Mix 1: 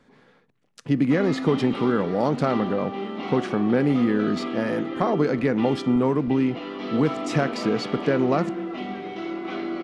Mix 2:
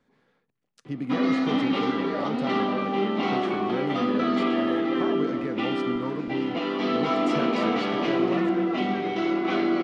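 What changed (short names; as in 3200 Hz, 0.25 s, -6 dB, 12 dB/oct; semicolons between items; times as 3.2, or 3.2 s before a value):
speech -11.0 dB; background +6.0 dB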